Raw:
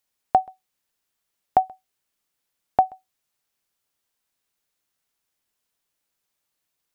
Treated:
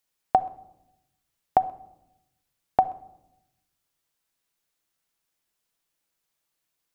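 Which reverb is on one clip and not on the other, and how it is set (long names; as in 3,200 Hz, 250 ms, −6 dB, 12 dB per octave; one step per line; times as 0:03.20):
rectangular room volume 2,600 cubic metres, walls furnished, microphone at 0.7 metres
level −1 dB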